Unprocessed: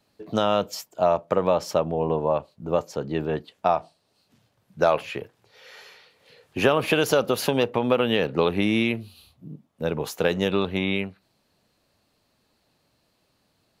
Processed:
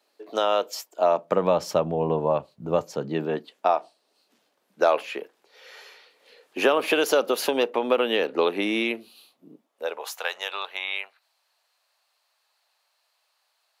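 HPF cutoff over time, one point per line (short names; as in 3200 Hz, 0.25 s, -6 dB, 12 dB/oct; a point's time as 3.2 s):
HPF 24 dB/oct
0.87 s 350 Hz
1.61 s 93 Hz
2.8 s 93 Hz
3.69 s 280 Hz
9.51 s 280 Hz
10.16 s 740 Hz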